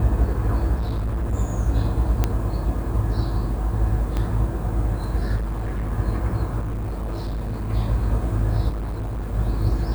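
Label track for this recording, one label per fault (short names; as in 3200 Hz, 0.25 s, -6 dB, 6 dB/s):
0.750000	1.350000	clipped -21 dBFS
2.240000	2.240000	pop -7 dBFS
4.170000	4.170000	pop -13 dBFS
5.360000	5.930000	clipped -22.5 dBFS
6.590000	7.700000	clipped -24 dBFS
8.690000	9.340000	clipped -24.5 dBFS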